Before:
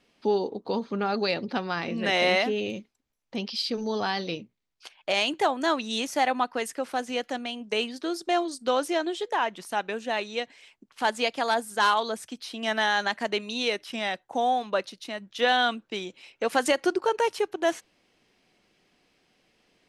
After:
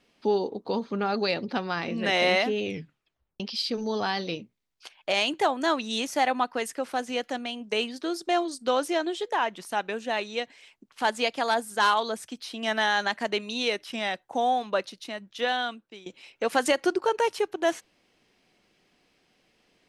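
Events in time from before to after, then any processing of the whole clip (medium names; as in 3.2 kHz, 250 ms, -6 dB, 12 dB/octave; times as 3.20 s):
2.65 s: tape stop 0.75 s
15.00–16.06 s: fade out, to -16.5 dB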